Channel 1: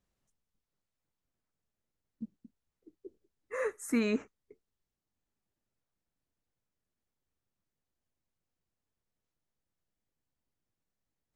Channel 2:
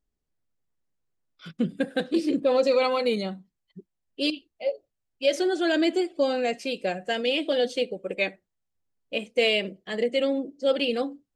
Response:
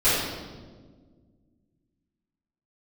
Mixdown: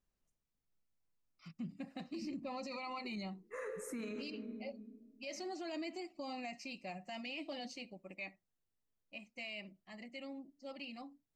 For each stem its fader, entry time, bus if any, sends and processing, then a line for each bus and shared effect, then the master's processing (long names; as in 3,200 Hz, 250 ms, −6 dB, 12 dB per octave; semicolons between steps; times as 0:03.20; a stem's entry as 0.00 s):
−7.5 dB, 0.00 s, send −21.5 dB, no processing
0:07.83 −8.5 dB → 0:08.57 −15 dB, 0.00 s, no send, phaser with its sweep stopped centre 2,300 Hz, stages 8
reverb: on, RT60 1.6 s, pre-delay 3 ms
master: brickwall limiter −35.5 dBFS, peak gain reduction 11.5 dB